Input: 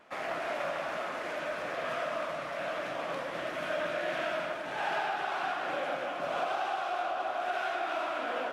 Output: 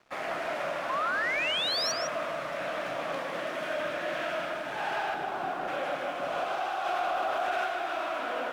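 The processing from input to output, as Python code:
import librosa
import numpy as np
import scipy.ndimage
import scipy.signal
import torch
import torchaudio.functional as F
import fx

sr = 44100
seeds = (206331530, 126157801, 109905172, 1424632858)

p1 = fx.rider(x, sr, range_db=10, speed_s=0.5)
p2 = x + (p1 * 10.0 ** (-1.0 / 20.0))
p3 = fx.tilt_shelf(p2, sr, db=7.5, hz=770.0, at=(5.14, 5.68))
p4 = np.sign(p3) * np.maximum(np.abs(p3) - 10.0 ** (-51.5 / 20.0), 0.0)
p5 = fx.spec_paint(p4, sr, seeds[0], shape='rise', start_s=0.89, length_s=1.03, low_hz=1000.0, high_hz=5900.0, level_db=-26.0)
p6 = p5 + fx.echo_single(p5, sr, ms=156, db=-7.0, dry=0)
p7 = 10.0 ** (-16.5 / 20.0) * np.tanh(p6 / 10.0 ** (-16.5 / 20.0))
p8 = fx.highpass(p7, sr, hz=140.0, slope=12, at=(3.19, 3.72))
p9 = fx.env_flatten(p8, sr, amount_pct=70, at=(6.84, 7.64), fade=0.02)
y = p9 * 10.0 ** (-4.0 / 20.0)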